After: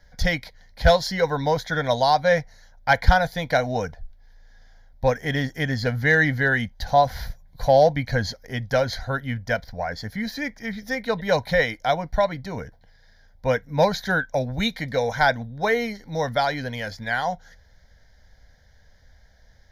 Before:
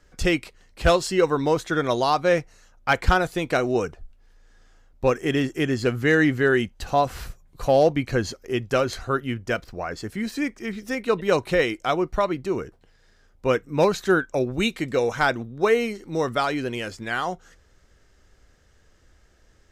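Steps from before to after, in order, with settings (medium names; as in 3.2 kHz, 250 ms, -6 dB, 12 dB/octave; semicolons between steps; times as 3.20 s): static phaser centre 1.8 kHz, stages 8; trim +4.5 dB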